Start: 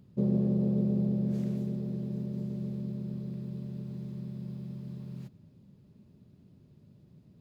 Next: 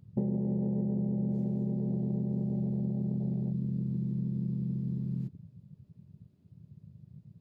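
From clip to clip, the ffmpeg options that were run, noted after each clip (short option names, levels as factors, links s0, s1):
-af "afwtdn=0.01,acompressor=threshold=0.0158:ratio=10,volume=2.66"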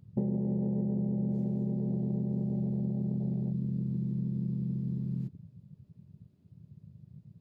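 -af anull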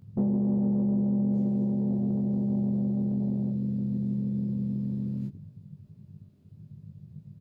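-filter_complex "[0:a]asoftclip=type=tanh:threshold=0.075,asplit=2[s0][s1];[s1]adelay=20,volume=0.75[s2];[s0][s2]amix=inputs=2:normalize=0,volume=1.41"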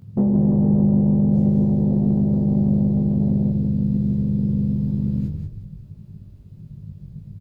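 -filter_complex "[0:a]asplit=5[s0][s1][s2][s3][s4];[s1]adelay=178,afreqshift=-51,volume=0.562[s5];[s2]adelay=356,afreqshift=-102,volume=0.174[s6];[s3]adelay=534,afreqshift=-153,volume=0.0543[s7];[s4]adelay=712,afreqshift=-204,volume=0.0168[s8];[s0][s5][s6][s7][s8]amix=inputs=5:normalize=0,volume=2.37"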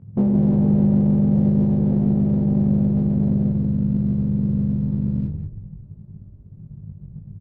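-af "adynamicsmooth=sensitivity=7.5:basefreq=800"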